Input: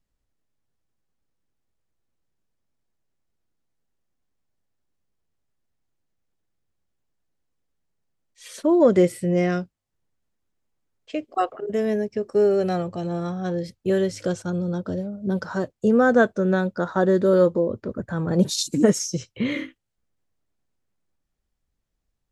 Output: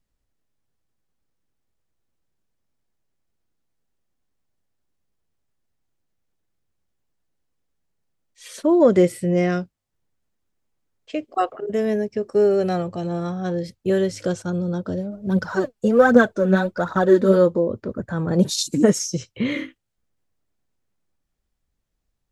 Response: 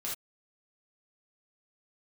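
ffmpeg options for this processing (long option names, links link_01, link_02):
-filter_complex "[0:a]asplit=3[link_01][link_02][link_03];[link_01]afade=type=out:start_time=15.1:duration=0.02[link_04];[link_02]aphaser=in_gain=1:out_gain=1:delay=5:decay=0.61:speed=1.3:type=triangular,afade=type=in:start_time=15.1:duration=0.02,afade=type=out:start_time=17.36:duration=0.02[link_05];[link_03]afade=type=in:start_time=17.36:duration=0.02[link_06];[link_04][link_05][link_06]amix=inputs=3:normalize=0,volume=1.5dB"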